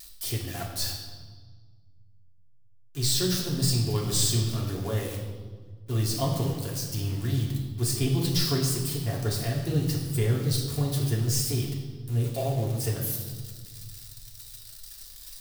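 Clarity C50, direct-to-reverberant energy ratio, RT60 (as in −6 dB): 4.5 dB, −3.5 dB, 1.5 s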